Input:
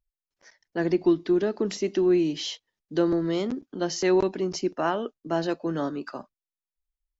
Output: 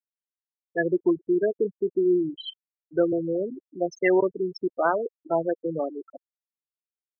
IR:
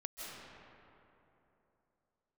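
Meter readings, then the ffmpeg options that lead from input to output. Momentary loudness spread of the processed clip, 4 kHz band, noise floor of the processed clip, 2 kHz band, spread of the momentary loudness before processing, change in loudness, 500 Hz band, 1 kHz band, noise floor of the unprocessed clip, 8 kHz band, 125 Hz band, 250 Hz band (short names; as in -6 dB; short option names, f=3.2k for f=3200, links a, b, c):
10 LU, -7.0 dB, under -85 dBFS, +4.0 dB, 10 LU, +0.5 dB, +1.5 dB, +1.5 dB, under -85 dBFS, n/a, -4.5 dB, -1.5 dB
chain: -af "afftfilt=real='re*gte(hypot(re,im),0.112)':imag='im*gte(hypot(re,im),0.112)':win_size=1024:overlap=0.75,equalizer=f=250:t=o:w=1:g=-9,equalizer=f=500:t=o:w=1:g=7,equalizer=f=2k:t=o:w=1:g=11"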